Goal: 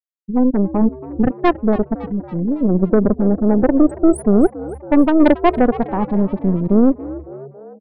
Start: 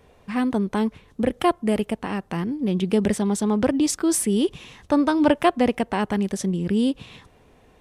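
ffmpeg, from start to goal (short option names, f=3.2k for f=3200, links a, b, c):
-filter_complex "[0:a]asettb=1/sr,asplit=3[a][b][c];[a]atrim=end=0.814[d];[b]atrim=start=0.81:end=1.53,asetpts=PTS-STARTPTS,afade=t=in:d=0.004:c=qsin,afade=t=out:st=0.716:d=0.004:c=qsin,equalizer=f=125:t=o:w=1:g=8,equalizer=f=500:t=o:w=1:g=-5,equalizer=f=2k:t=o:w=1:g=11,equalizer=f=4k:t=o:w=1:g=-8[e];[c]atrim=start=1.526[f];[d][e]acrossfade=d=0.004:c1=hsin:c2=qsin[g];[g][f]acrossfade=d=0.004:c1=qsin:c2=hsin,afftfilt=real='re*gte(hypot(re,im),0.251)':imag='im*gte(hypot(re,im),0.251)':win_size=1024:overlap=0.75,equalizer=f=320:w=0.48:g=6,asplit=2[h][i];[i]alimiter=limit=-9.5dB:level=0:latency=1:release=104,volume=-2.5dB[j];[h][j]amix=inputs=2:normalize=0,aeval=exprs='1.19*(cos(1*acos(clip(val(0)/1.19,-1,1)))-cos(1*PI/2))+0.0106*(cos(3*acos(clip(val(0)/1.19,-1,1)))-cos(3*PI/2))+0.0168*(cos(5*acos(clip(val(0)/1.19,-1,1)))-cos(5*PI/2))+0.168*(cos(6*acos(clip(val(0)/1.19,-1,1)))-cos(6*PI/2))+0.00944*(cos(8*acos(clip(val(0)/1.19,-1,1)))-cos(8*PI/2))':c=same,asplit=2[k][l];[l]asplit=5[m][n][o][p][q];[m]adelay=278,afreqshift=70,volume=-17dB[r];[n]adelay=556,afreqshift=140,volume=-21.9dB[s];[o]adelay=834,afreqshift=210,volume=-26.8dB[t];[p]adelay=1112,afreqshift=280,volume=-31.6dB[u];[q]adelay=1390,afreqshift=350,volume=-36.5dB[v];[r][s][t][u][v]amix=inputs=5:normalize=0[w];[k][w]amix=inputs=2:normalize=0,volume=-2.5dB"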